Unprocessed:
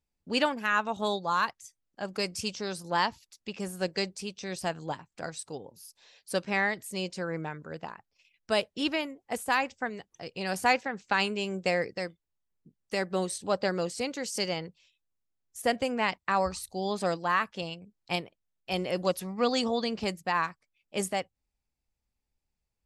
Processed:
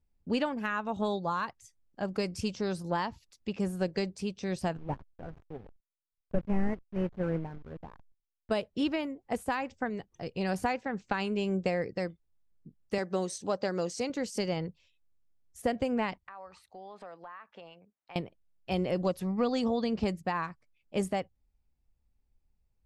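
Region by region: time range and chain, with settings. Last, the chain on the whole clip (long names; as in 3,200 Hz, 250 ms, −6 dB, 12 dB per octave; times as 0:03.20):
0:04.77–0:08.51: linear delta modulator 16 kbit/s, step −42 dBFS + noise gate −36 dBFS, range −7 dB + slack as between gear wheels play −45.5 dBFS
0:12.98–0:14.10: high-pass filter 280 Hz 6 dB per octave + parametric band 6,100 Hz +11.5 dB 0.47 octaves
0:16.27–0:18.16: high-pass filter 270 Hz 6 dB per octave + three-way crossover with the lows and the highs turned down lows −14 dB, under 560 Hz, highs −18 dB, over 2,800 Hz + downward compressor 4 to 1, threshold −46 dBFS
whole clip: downward compressor 3 to 1, threshold −29 dBFS; spectral tilt −2.5 dB per octave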